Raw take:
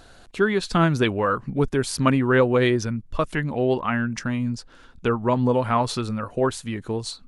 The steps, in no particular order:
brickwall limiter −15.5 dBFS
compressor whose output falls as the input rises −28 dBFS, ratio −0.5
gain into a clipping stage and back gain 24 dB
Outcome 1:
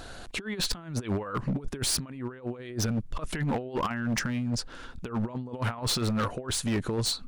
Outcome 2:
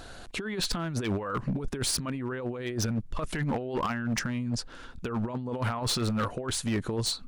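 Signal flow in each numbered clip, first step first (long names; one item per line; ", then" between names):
compressor whose output falls as the input rises, then gain into a clipping stage and back, then brickwall limiter
brickwall limiter, then compressor whose output falls as the input rises, then gain into a clipping stage and back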